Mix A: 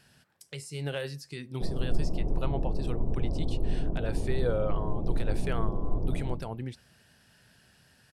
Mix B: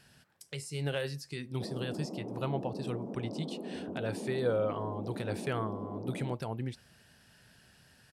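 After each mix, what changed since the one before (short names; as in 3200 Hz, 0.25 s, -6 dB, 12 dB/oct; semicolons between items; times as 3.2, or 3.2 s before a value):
background: add brick-wall FIR high-pass 170 Hz; reverb: off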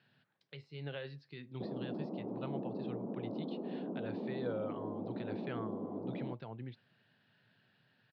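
speech -8.5 dB; master: add Chebyshev band-pass 110–4000 Hz, order 4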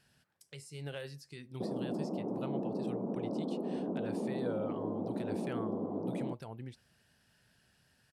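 background +4.0 dB; master: remove Chebyshev band-pass 110–4000 Hz, order 4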